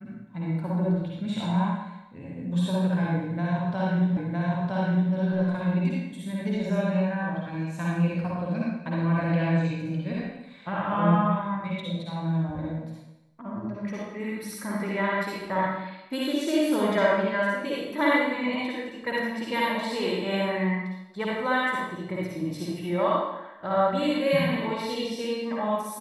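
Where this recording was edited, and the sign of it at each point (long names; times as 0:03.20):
0:04.17: the same again, the last 0.96 s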